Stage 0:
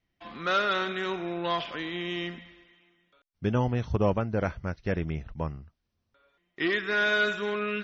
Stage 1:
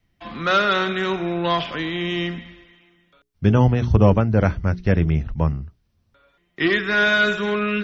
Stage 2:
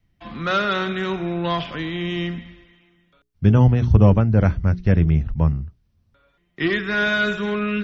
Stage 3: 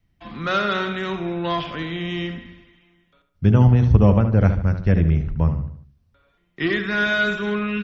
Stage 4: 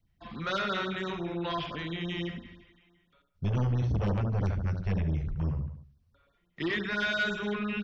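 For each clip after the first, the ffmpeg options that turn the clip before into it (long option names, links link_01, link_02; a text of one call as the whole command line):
ffmpeg -i in.wav -filter_complex "[0:a]bandreject=frequency=60:width_type=h:width=6,bandreject=frequency=120:width_type=h:width=6,bandreject=frequency=180:width_type=h:width=6,bandreject=frequency=240:width_type=h:width=6,bandreject=frequency=300:width_type=h:width=6,bandreject=frequency=360:width_type=h:width=6,bandreject=frequency=420:width_type=h:width=6,acrossover=split=210|2700[link_01][link_02][link_03];[link_01]acontrast=83[link_04];[link_04][link_02][link_03]amix=inputs=3:normalize=0,volume=7.5dB" out.wav
ffmpeg -i in.wav -af "bass=frequency=250:gain=6,treble=frequency=4000:gain=-1,volume=-3dB" out.wav
ffmpeg -i in.wav -filter_complex "[0:a]asplit=2[link_01][link_02];[link_02]adelay=73,lowpass=frequency=3100:poles=1,volume=-9dB,asplit=2[link_03][link_04];[link_04]adelay=73,lowpass=frequency=3100:poles=1,volume=0.46,asplit=2[link_05][link_06];[link_06]adelay=73,lowpass=frequency=3100:poles=1,volume=0.46,asplit=2[link_07][link_08];[link_08]adelay=73,lowpass=frequency=3100:poles=1,volume=0.46,asplit=2[link_09][link_10];[link_10]adelay=73,lowpass=frequency=3100:poles=1,volume=0.46[link_11];[link_01][link_03][link_05][link_07][link_09][link_11]amix=inputs=6:normalize=0,volume=-1dB" out.wav
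ffmpeg -i in.wav -filter_complex "[0:a]acrossover=split=2300[link_01][link_02];[link_01]asoftclip=type=tanh:threshold=-19.5dB[link_03];[link_03][link_02]amix=inputs=2:normalize=0,afftfilt=real='re*(1-between(b*sr/1024,220*pow(2700/220,0.5+0.5*sin(2*PI*5.9*pts/sr))/1.41,220*pow(2700/220,0.5+0.5*sin(2*PI*5.9*pts/sr))*1.41))':imag='im*(1-between(b*sr/1024,220*pow(2700/220,0.5+0.5*sin(2*PI*5.9*pts/sr))/1.41,220*pow(2700/220,0.5+0.5*sin(2*PI*5.9*pts/sr))*1.41))':win_size=1024:overlap=0.75,volume=-5.5dB" out.wav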